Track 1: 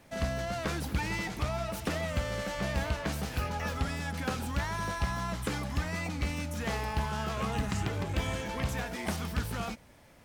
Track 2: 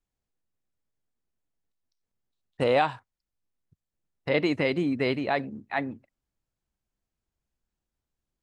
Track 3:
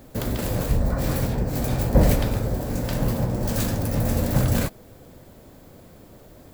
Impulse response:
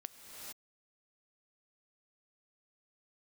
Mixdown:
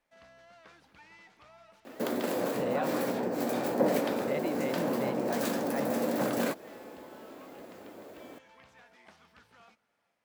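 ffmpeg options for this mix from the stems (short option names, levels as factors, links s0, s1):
-filter_complex "[0:a]highpass=f=1100:p=1,acrossover=split=6700[s0][s1];[s1]acompressor=threshold=0.00126:ratio=4:attack=1:release=60[s2];[s0][s2]amix=inputs=2:normalize=0,volume=0.158,asplit=2[s3][s4];[s4]volume=0.211[s5];[1:a]volume=0.422[s6];[2:a]highpass=f=250:w=0.5412,highpass=f=250:w=1.3066,adelay=1850,volume=1.33,asplit=2[s7][s8];[s8]volume=0.0841[s9];[3:a]atrim=start_sample=2205[s10];[s5][s9]amix=inputs=2:normalize=0[s11];[s11][s10]afir=irnorm=-1:irlink=0[s12];[s3][s6][s7][s12]amix=inputs=4:normalize=0,highshelf=f=3200:g=-9.5,acompressor=threshold=0.0251:ratio=1.5"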